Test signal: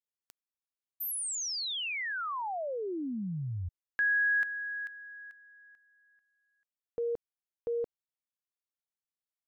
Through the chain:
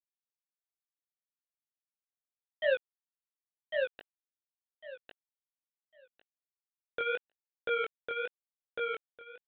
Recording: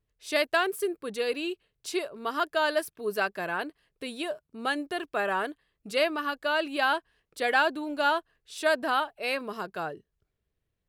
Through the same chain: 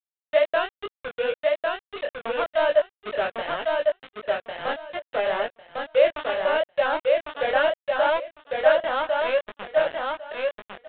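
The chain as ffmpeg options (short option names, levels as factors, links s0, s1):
-filter_complex "[0:a]highpass=f=550:t=q:w=4.9,aeval=exprs='val(0)*gte(abs(val(0)),0.0794)':c=same,flanger=delay=17:depth=7.4:speed=2.2,asplit=2[s0][s1];[s1]aecho=0:1:1102|2204|3306:0.708|0.127|0.0229[s2];[s0][s2]amix=inputs=2:normalize=0,aresample=8000,aresample=44100"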